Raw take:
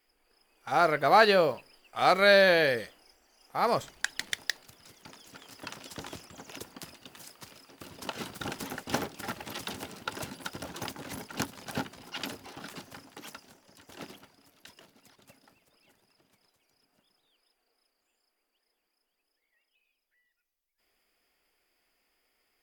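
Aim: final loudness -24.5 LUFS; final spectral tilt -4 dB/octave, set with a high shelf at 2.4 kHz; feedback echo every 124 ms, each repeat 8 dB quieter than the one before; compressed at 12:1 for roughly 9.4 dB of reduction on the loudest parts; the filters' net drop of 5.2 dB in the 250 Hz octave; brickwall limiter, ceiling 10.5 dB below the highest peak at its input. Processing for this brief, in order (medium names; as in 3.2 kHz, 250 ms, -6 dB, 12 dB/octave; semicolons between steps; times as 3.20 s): peaking EQ 250 Hz -7.5 dB; treble shelf 2.4 kHz -8 dB; compression 12:1, threshold -27 dBFS; peak limiter -24 dBFS; feedback delay 124 ms, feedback 40%, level -8 dB; trim +14.5 dB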